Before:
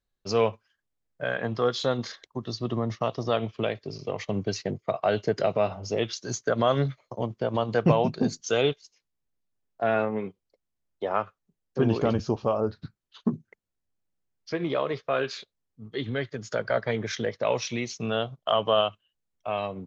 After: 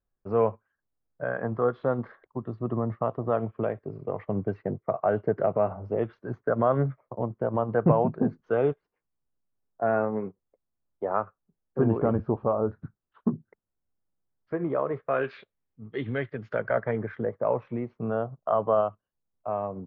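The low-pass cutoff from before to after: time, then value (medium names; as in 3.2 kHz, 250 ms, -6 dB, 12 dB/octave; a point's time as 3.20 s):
low-pass 24 dB/octave
14.88 s 1.5 kHz
15.35 s 2.5 kHz
16.45 s 2.5 kHz
17.30 s 1.3 kHz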